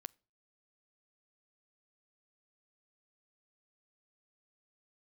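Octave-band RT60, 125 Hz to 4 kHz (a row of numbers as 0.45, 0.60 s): 0.50, 0.45, 0.45, 0.35, 0.30, 0.35 s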